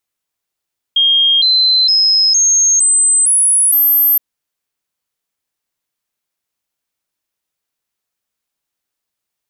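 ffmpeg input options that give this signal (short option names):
-f lavfi -i "aevalsrc='0.398*clip(min(mod(t,0.46),0.46-mod(t,0.46))/0.005,0,1)*sin(2*PI*3230*pow(2,floor(t/0.46)/3)*mod(t,0.46))':d=3.22:s=44100"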